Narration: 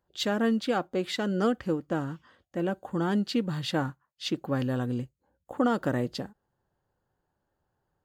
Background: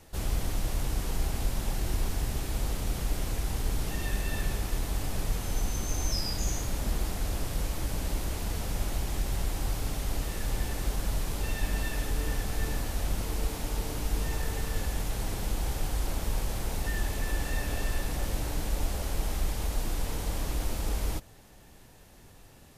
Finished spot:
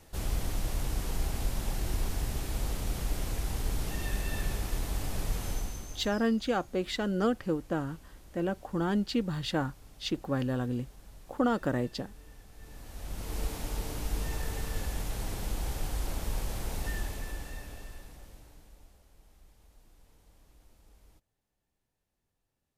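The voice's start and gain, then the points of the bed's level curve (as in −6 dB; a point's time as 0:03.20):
5.80 s, −2.0 dB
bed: 0:05.49 −2 dB
0:06.32 −21.5 dB
0:12.53 −21.5 dB
0:13.38 −3 dB
0:16.90 −3 dB
0:19.06 −29.5 dB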